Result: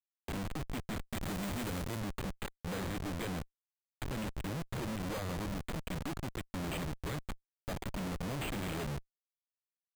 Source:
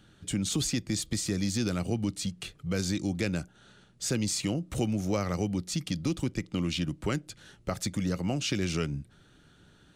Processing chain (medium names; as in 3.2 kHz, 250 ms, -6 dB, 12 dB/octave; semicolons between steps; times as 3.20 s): send-on-delta sampling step -30.5 dBFS; tilt EQ +4 dB/octave; compression 10:1, threshold -38 dBFS, peak gain reduction 21.5 dB; careless resampling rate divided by 8×, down filtered, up hold; Schmitt trigger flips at -55 dBFS; 1.07–2.00 s: treble shelf 6 kHz +5.5 dB; trim +15.5 dB